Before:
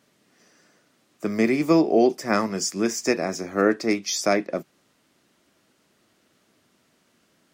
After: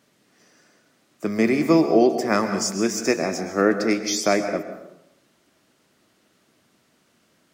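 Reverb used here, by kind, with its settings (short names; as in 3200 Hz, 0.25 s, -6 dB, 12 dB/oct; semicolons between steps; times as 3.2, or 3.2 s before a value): plate-style reverb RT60 0.86 s, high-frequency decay 0.65×, pre-delay 0.11 s, DRR 8.5 dB; gain +1 dB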